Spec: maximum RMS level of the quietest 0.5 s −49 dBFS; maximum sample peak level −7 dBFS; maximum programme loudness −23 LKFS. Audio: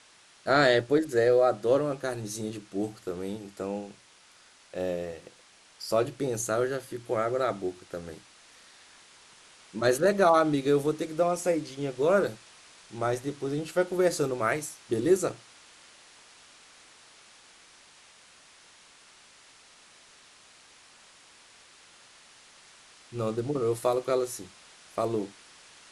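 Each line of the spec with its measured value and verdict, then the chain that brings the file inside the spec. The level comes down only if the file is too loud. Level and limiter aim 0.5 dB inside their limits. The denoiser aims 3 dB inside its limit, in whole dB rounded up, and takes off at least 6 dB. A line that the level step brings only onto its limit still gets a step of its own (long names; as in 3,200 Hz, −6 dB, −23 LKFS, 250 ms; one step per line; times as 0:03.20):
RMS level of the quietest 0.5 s −57 dBFS: in spec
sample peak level −9.0 dBFS: in spec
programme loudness −28.0 LKFS: in spec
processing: no processing needed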